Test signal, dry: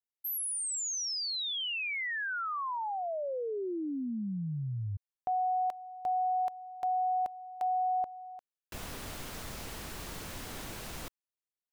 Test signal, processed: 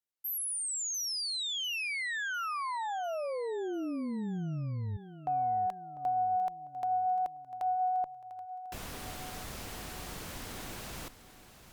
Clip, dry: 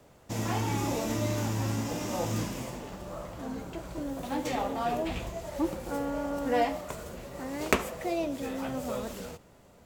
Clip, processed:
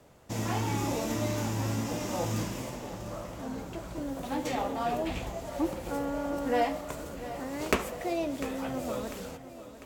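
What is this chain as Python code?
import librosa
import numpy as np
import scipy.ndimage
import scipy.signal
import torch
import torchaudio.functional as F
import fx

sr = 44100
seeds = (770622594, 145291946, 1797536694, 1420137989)

p1 = fx.vibrato(x, sr, rate_hz=6.7, depth_cents=7.4)
p2 = fx.tube_stage(p1, sr, drive_db=10.0, bias=0.2)
y = p2 + fx.echo_feedback(p2, sr, ms=698, feedback_pct=49, wet_db=-14.0, dry=0)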